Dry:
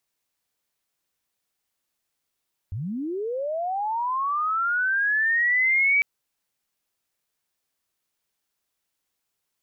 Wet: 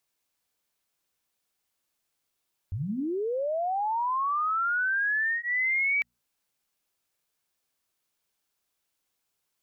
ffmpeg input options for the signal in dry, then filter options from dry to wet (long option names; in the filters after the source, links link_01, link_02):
-f lavfi -i "aevalsrc='pow(10,(-27.5+11*t/3.3)/20)*sin(2*PI*(84*t+2216*t*t/(2*3.3)))':duration=3.3:sample_rate=44100"
-af "bandreject=frequency=60:width_type=h:width=6,bandreject=frequency=120:width_type=h:width=6,bandreject=frequency=180:width_type=h:width=6,bandreject=frequency=240:width_type=h:width=6,acompressor=threshold=-26dB:ratio=3,bandreject=frequency=1900:width=23"